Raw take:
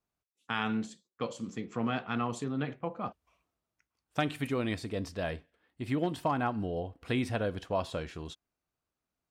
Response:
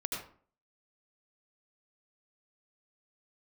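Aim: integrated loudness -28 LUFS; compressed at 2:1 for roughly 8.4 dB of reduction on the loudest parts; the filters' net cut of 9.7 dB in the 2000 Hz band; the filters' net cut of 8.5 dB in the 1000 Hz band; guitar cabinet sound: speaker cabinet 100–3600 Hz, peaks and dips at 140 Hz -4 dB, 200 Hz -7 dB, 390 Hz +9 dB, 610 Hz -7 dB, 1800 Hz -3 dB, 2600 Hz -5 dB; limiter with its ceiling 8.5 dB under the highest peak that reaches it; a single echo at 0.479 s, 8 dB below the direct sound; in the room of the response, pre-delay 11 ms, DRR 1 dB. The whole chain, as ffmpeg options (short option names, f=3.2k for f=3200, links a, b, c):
-filter_complex "[0:a]equalizer=f=1k:t=o:g=-8.5,equalizer=f=2k:t=o:g=-6.5,acompressor=threshold=-43dB:ratio=2,alimiter=level_in=10dB:limit=-24dB:level=0:latency=1,volume=-10dB,aecho=1:1:479:0.398,asplit=2[a][b];[1:a]atrim=start_sample=2205,adelay=11[c];[b][c]afir=irnorm=-1:irlink=0,volume=-4dB[d];[a][d]amix=inputs=2:normalize=0,highpass=100,equalizer=f=140:t=q:w=4:g=-4,equalizer=f=200:t=q:w=4:g=-7,equalizer=f=390:t=q:w=4:g=9,equalizer=f=610:t=q:w=4:g=-7,equalizer=f=1.8k:t=q:w=4:g=-3,equalizer=f=2.6k:t=q:w=4:g=-5,lowpass=f=3.6k:w=0.5412,lowpass=f=3.6k:w=1.3066,volume=15dB"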